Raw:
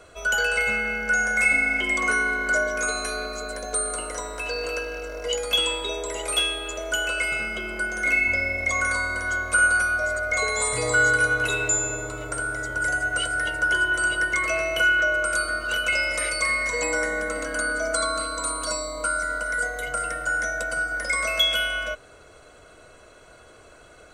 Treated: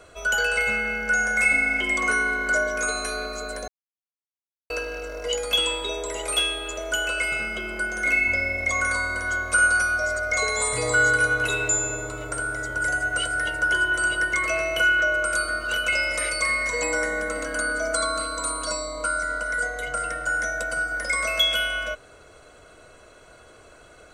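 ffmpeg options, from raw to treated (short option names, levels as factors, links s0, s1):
-filter_complex "[0:a]asettb=1/sr,asplit=3[s0][s1][s2];[s0]atrim=end=9.524[s3];[s1]atrim=start=9.52:end=10.56,asetpts=PTS-STARTPTS,afade=t=in:d=0.004:c=qsin,afade=t=out:st=1.036:d=0.004:c=qsin,equalizer=f=5500:t=o:w=0.36:g=9[s4];[s2]atrim=start=10.556[s5];[s3][s4]acrossfade=d=0.004:c1=hsin:c2=qsin[s6];[s6][s5]acrossfade=d=0.004:c1=qsin:c2=hsin,asettb=1/sr,asplit=3[s7][s8][s9];[s7]atrim=end=18.624[s10];[s8]atrim=start=18.62:end=20.26,asetpts=PTS-STARTPTS,afade=t=in:d=0.004:c=qsin,afade=t=out:st=1.636:d=0.004:c=qsin,lowpass=9600[s11];[s9]atrim=start=20.256[s12];[s10][s11]acrossfade=d=0.004:c1=hsin:c2=qsin[s13];[s13][s12]acrossfade=d=0.004:c1=qsin:c2=hsin,asplit=3[s14][s15][s16];[s14]atrim=end=3.68,asetpts=PTS-STARTPTS,afade=t=out:st=3.676:d=0.004:c=hsin[s17];[s15]atrim=start=3.68:end=4.7,asetpts=PTS-STARTPTS,volume=0[s18];[s16]atrim=start=4.7,asetpts=PTS-STARTPTS,afade=t=in:d=0.004:c=hsin[s19];[s17][s18][s19]concat=n=3:v=0:a=1"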